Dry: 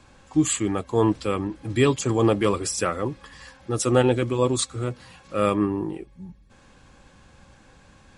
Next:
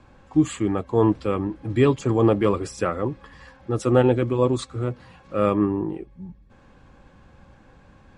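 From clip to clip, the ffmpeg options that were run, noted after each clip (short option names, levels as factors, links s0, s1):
-af "lowpass=f=1400:p=1,volume=1.26"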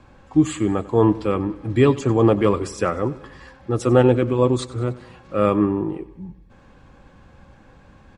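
-af "aecho=1:1:96|192|288|384|480:0.112|0.064|0.0365|0.0208|0.0118,volume=1.33"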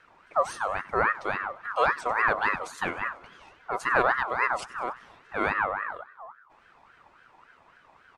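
-af "aeval=exprs='val(0)*sin(2*PI*1200*n/s+1200*0.3/3.6*sin(2*PI*3.6*n/s))':c=same,volume=0.501"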